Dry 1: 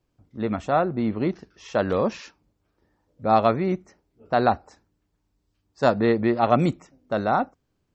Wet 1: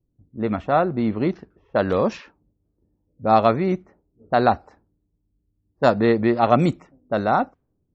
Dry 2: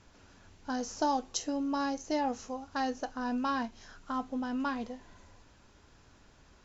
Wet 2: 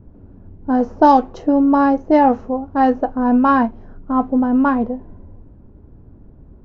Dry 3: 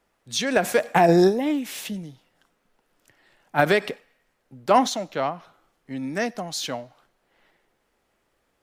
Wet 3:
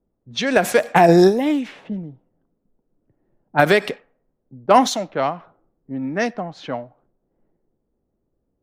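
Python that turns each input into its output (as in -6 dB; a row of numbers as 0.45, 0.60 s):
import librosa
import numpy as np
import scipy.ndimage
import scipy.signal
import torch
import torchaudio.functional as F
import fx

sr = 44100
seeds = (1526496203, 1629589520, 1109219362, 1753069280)

y = fx.env_lowpass(x, sr, base_hz=310.0, full_db=-19.0)
y = librosa.util.normalize(y) * 10.0 ** (-1.5 / 20.0)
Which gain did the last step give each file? +2.5, +19.0, +4.5 dB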